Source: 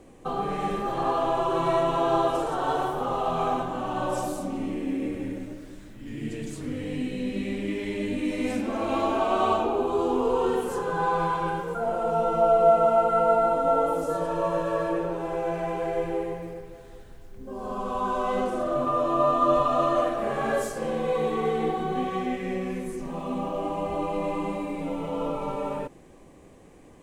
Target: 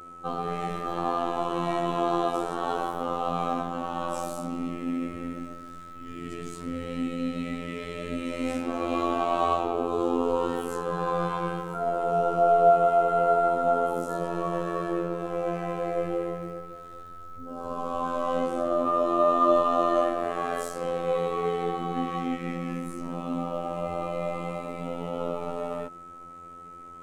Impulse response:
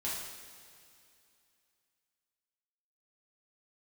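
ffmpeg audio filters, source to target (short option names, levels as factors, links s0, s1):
-af "afftfilt=real='hypot(re,im)*cos(PI*b)':imag='0':win_size=2048:overlap=0.75,aeval=exprs='val(0)+0.00631*sin(2*PI*1300*n/s)':c=same,volume=1.19"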